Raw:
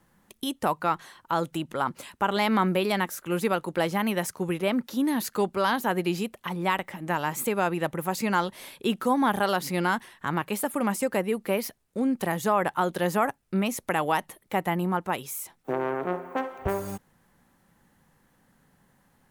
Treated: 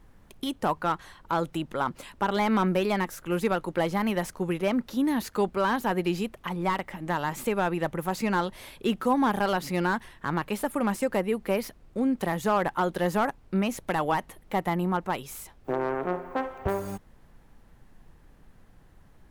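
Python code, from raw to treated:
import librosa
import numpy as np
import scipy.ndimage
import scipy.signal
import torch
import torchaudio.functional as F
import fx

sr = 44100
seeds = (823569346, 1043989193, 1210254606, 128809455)

y = fx.dmg_noise_colour(x, sr, seeds[0], colour='brown', level_db=-53.0)
y = fx.high_shelf(y, sr, hz=5000.0, db=-5.0)
y = fx.slew_limit(y, sr, full_power_hz=120.0)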